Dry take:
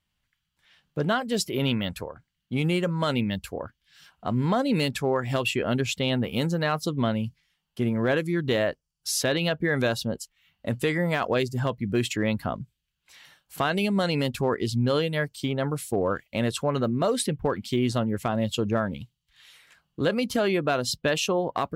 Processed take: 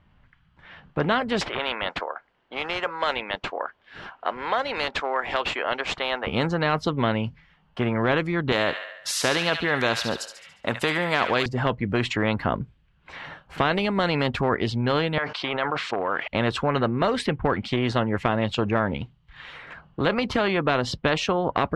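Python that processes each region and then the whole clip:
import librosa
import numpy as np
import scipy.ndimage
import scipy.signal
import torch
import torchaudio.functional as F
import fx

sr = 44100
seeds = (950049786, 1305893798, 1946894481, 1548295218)

y = fx.chain(x, sr, fx.highpass(hz=620.0, slope=24),
    fx.high_shelf(hz=7600.0, db=7.5),
    fx.resample_linear(factor=3), at=(1.41, 6.27))
y = fx.chain(y, sr, fx.riaa(side='recording'),
    fx.echo_wet_highpass(ms=71, feedback_pct=51, hz=1700.0, wet_db=-9.0), at=(8.52, 11.46))
y = fx.chain(y, sr, fx.highpass(hz=910.0, slope=12),
    fx.air_absorb(metres=190.0),
    fx.env_flatten(amount_pct=70), at=(15.18, 16.28))
y = scipy.signal.sosfilt(scipy.signal.butter(2, 1400.0, 'lowpass', fs=sr, output='sos'), y)
y = fx.spectral_comp(y, sr, ratio=2.0)
y = y * librosa.db_to_amplitude(8.5)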